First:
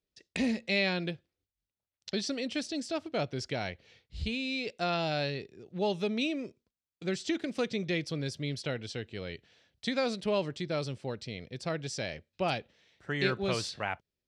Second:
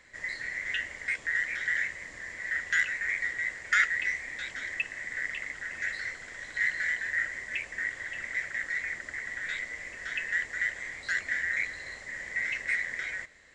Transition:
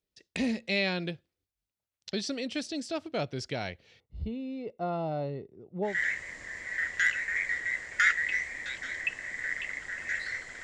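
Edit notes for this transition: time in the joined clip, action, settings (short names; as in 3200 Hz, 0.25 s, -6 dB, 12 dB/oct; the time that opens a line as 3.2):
first
4–6 polynomial smoothing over 65 samples
5.91 switch to second from 1.64 s, crossfade 0.18 s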